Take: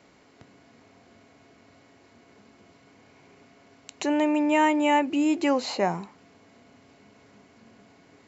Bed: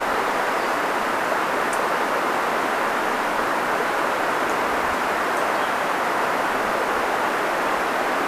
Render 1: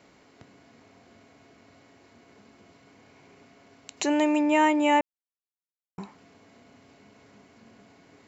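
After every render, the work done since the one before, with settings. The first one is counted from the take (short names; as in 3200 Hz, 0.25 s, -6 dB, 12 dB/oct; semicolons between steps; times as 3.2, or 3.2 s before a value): 3.97–4.41 high shelf 4500 Hz +8.5 dB; 5.01–5.98 mute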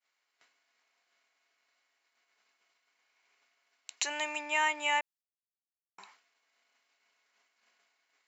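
expander -46 dBFS; HPF 1400 Hz 12 dB/oct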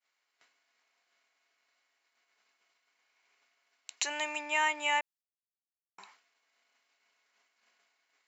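nothing audible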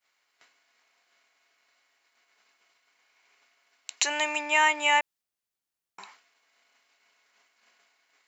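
gain +7 dB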